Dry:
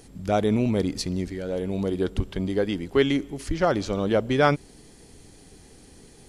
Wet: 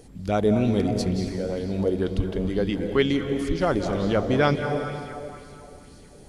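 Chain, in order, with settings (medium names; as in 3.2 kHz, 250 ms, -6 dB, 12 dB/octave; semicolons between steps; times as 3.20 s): bass shelf 410 Hz +5.5 dB; reverberation RT60 2.7 s, pre-delay 164 ms, DRR 6 dB; sweeping bell 2.1 Hz 490–4800 Hz +7 dB; trim -4 dB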